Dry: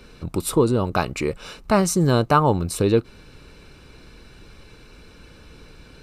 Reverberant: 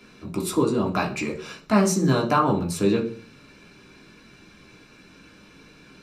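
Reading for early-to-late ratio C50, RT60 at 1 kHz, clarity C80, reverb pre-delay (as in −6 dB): 12.0 dB, 0.40 s, 16.5 dB, 3 ms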